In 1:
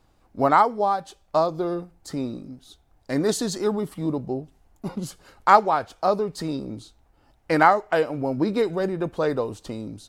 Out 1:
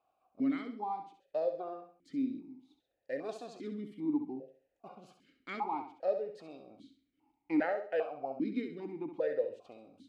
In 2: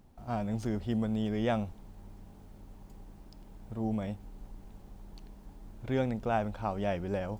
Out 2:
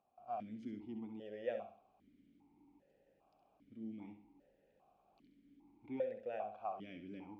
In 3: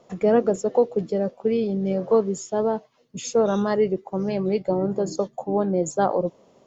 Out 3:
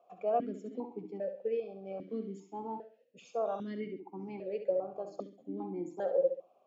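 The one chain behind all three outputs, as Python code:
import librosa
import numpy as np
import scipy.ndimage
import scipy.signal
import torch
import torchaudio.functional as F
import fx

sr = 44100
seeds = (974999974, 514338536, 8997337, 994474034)

p1 = x + fx.echo_feedback(x, sr, ms=67, feedback_pct=34, wet_db=-8.5, dry=0)
p2 = fx.vowel_held(p1, sr, hz=2.5)
y = F.gain(torch.from_numpy(p2), -2.5).numpy()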